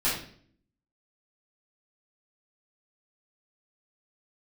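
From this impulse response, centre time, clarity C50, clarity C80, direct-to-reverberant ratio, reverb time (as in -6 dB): 42 ms, 3.5 dB, 8.5 dB, -11.5 dB, 0.55 s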